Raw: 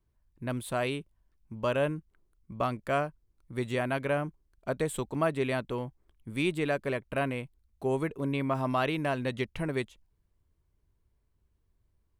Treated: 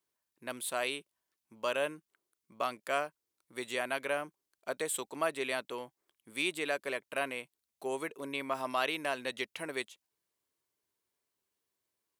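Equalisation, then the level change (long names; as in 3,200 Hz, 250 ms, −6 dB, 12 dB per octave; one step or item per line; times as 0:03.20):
high-pass filter 380 Hz 12 dB per octave
high-shelf EQ 2,400 Hz +10.5 dB
−4.5 dB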